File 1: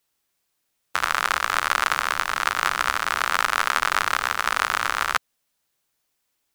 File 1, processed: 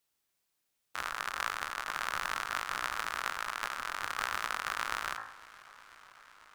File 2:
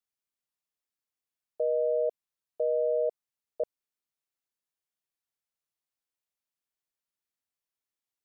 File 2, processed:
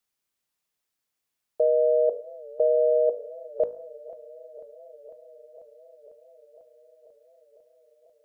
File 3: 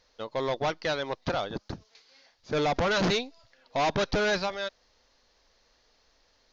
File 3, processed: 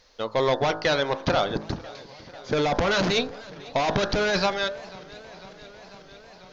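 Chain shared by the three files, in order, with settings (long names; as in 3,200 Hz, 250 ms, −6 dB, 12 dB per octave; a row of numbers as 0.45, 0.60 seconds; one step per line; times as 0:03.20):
hum removal 53.87 Hz, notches 34
compressor whose output falls as the input rises −28 dBFS, ratio −1
feedback echo with a swinging delay time 496 ms, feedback 77%, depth 127 cents, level −21 dB
normalise the peak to −12 dBFS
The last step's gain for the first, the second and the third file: −9.5, +8.0, +6.5 decibels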